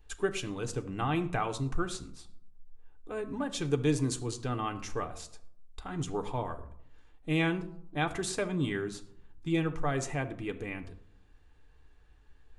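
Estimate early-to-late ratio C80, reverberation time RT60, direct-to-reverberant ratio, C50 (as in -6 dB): 17.5 dB, 0.70 s, 5.5 dB, 14.5 dB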